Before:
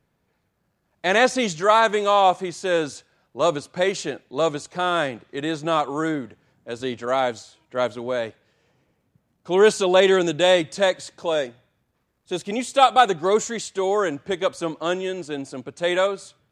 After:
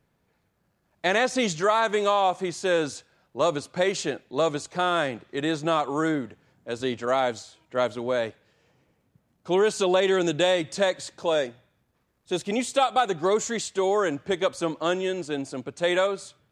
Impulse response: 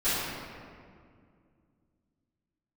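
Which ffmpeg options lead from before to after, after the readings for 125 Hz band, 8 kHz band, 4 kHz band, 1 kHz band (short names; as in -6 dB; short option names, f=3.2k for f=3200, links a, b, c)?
-1.5 dB, -1.5 dB, -3.5 dB, -5.0 dB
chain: -af "acompressor=threshold=-18dB:ratio=6"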